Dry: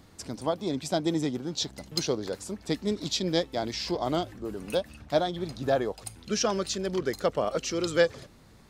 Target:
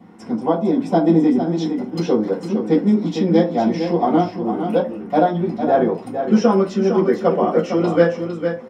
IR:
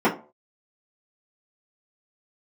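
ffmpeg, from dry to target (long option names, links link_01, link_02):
-filter_complex "[0:a]equalizer=frequency=380:width=4.3:gain=-4.5,aecho=1:1:456:0.422[link_01];[1:a]atrim=start_sample=2205[link_02];[link_01][link_02]afir=irnorm=-1:irlink=0,volume=-10dB"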